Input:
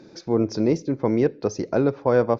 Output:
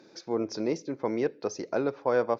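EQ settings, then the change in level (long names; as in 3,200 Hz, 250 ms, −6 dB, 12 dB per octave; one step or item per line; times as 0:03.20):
high-pass filter 530 Hz 6 dB per octave
−3.0 dB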